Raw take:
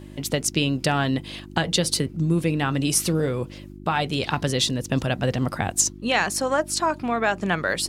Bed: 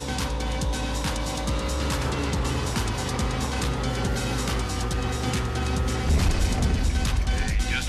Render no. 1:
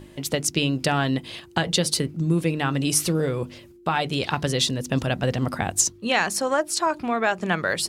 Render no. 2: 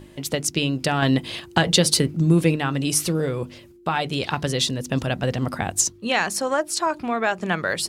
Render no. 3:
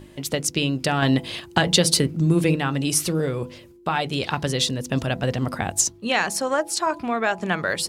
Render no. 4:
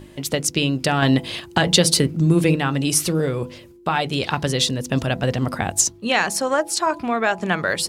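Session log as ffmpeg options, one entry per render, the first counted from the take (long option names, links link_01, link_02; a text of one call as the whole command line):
ffmpeg -i in.wav -af "bandreject=frequency=50:width_type=h:width=4,bandreject=frequency=100:width_type=h:width=4,bandreject=frequency=150:width_type=h:width=4,bandreject=frequency=200:width_type=h:width=4,bandreject=frequency=250:width_type=h:width=4,bandreject=frequency=300:width_type=h:width=4" out.wav
ffmpeg -i in.wav -filter_complex "[0:a]asettb=1/sr,asplit=3[link_01][link_02][link_03];[link_01]atrim=end=1.024[link_04];[link_02]atrim=start=1.02:end=2.56,asetpts=PTS-STARTPTS,afade=type=in:duration=0.004:curve=qsin,afade=type=out:start_time=1.536:duration=0.004:curve=qsin,acontrast=24[link_05];[link_03]atrim=start=2.556[link_06];[link_04][link_05]acrossfade=duration=0.004:curve1=hsin:curve2=qsin[link_07];[link_07][link_06]acrossfade=duration=0.004:curve1=qsin:curve2=hsin" out.wav
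ffmpeg -i in.wav -af "bandreject=frequency=167.1:width_type=h:width=4,bandreject=frequency=334.2:width_type=h:width=4,bandreject=frequency=501.3:width_type=h:width=4,bandreject=frequency=668.4:width_type=h:width=4,bandreject=frequency=835.5:width_type=h:width=4,bandreject=frequency=1002.6:width_type=h:width=4" out.wav
ffmpeg -i in.wav -af "volume=2.5dB,alimiter=limit=-3dB:level=0:latency=1" out.wav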